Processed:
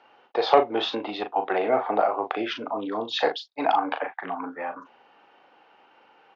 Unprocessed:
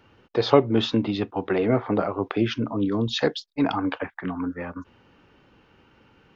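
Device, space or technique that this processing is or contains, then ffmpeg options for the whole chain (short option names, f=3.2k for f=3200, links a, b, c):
intercom: -filter_complex "[0:a]highpass=490,lowpass=4.5k,equalizer=f=760:t=o:w=0.52:g=11,asoftclip=type=tanh:threshold=-4.5dB,asplit=2[a][b];[b]adelay=38,volume=-7dB[c];[a][c]amix=inputs=2:normalize=0"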